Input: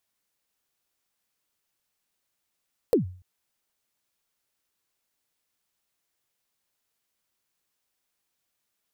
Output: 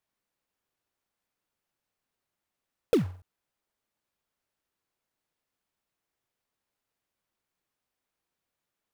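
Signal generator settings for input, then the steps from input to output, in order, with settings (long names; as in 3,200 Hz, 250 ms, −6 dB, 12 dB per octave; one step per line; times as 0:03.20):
synth kick length 0.29 s, from 530 Hz, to 91 Hz, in 121 ms, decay 0.44 s, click on, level −13.5 dB
one scale factor per block 3 bits
high-shelf EQ 2,700 Hz −11 dB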